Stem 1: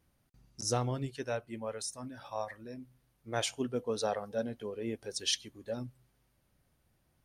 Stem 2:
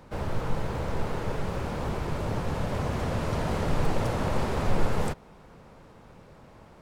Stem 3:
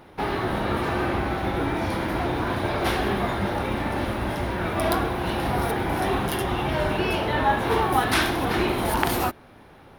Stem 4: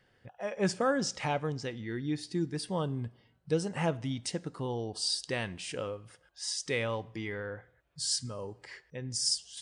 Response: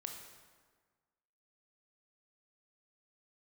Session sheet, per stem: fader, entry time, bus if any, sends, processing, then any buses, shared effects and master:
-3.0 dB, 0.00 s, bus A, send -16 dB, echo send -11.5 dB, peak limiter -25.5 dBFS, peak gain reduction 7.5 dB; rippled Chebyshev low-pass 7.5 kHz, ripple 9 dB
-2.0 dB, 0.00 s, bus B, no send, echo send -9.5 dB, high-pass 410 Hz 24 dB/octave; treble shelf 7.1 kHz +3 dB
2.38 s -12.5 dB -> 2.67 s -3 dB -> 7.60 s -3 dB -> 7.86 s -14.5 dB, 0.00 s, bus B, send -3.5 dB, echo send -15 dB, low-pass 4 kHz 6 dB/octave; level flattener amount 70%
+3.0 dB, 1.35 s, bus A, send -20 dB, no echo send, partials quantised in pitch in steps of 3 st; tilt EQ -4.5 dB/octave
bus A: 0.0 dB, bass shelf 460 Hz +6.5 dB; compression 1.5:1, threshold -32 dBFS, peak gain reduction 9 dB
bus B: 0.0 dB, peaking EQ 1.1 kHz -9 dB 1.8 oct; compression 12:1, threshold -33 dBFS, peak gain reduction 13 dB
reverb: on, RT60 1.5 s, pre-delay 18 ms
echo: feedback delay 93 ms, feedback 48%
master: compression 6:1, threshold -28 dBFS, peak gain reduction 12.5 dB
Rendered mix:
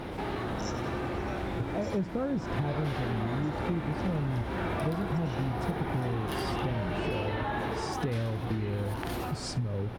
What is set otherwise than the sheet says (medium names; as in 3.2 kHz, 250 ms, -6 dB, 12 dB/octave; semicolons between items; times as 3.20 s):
stem 2 -2.0 dB -> -8.5 dB; stem 4: missing partials quantised in pitch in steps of 3 st